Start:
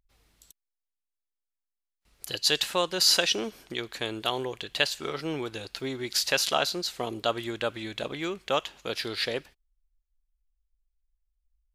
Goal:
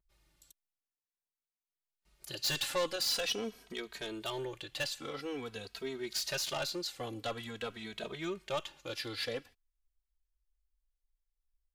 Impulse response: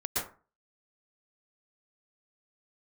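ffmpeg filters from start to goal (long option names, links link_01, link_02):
-filter_complex "[0:a]asettb=1/sr,asplit=3[link_01][link_02][link_03];[link_01]atrim=end=2.384[link_04];[link_02]atrim=start=2.38:end=2.96,asetpts=PTS-STARTPTS,afade=type=in:duration=0.004:curve=qsin,afade=type=out:start_time=0.576:duration=0.004:curve=qsin,acontrast=29[link_05];[link_03]atrim=start=2.956[link_06];[link_04][link_05]acrossfade=duration=0.004:curve1=hsin:curve2=qsin[link_07];[link_07][link_06]acrossfade=duration=0.004:curve1=qsin:curve2=hsin,asoftclip=type=tanh:threshold=-22.5dB,asplit=2[link_08][link_09];[link_09]adelay=2.8,afreqshift=-0.48[link_10];[link_08][link_10]amix=inputs=2:normalize=1,volume=-3dB"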